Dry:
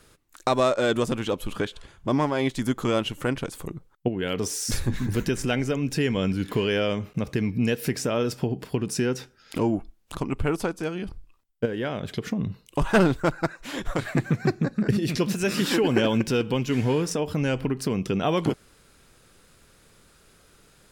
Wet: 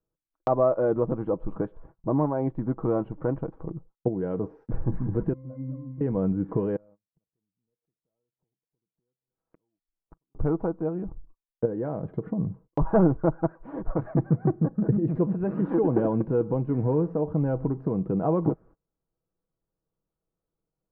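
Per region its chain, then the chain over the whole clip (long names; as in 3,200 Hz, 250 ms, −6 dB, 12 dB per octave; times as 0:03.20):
0:05.33–0:06.01: mid-hump overdrive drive 23 dB, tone 2,100 Hz, clips at −12.5 dBFS + resonances in every octave C, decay 0.65 s
0:06.76–0:10.35: variable-slope delta modulation 16 kbit/s + gate with flip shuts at −31 dBFS, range −32 dB
whole clip: low-pass filter 1,000 Hz 24 dB per octave; noise gate −48 dBFS, range −27 dB; comb filter 6.2 ms, depth 39%; level −1 dB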